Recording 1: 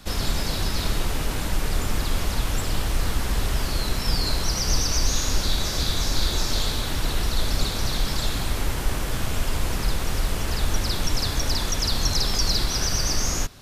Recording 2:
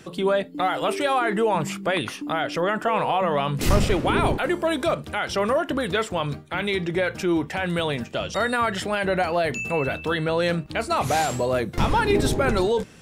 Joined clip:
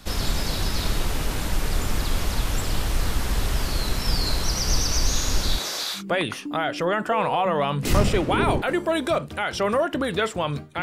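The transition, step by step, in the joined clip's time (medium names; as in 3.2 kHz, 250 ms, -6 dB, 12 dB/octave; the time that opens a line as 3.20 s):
recording 1
5.57–6.03 s: high-pass 260 Hz -> 1.2 kHz
5.98 s: go over to recording 2 from 1.74 s, crossfade 0.10 s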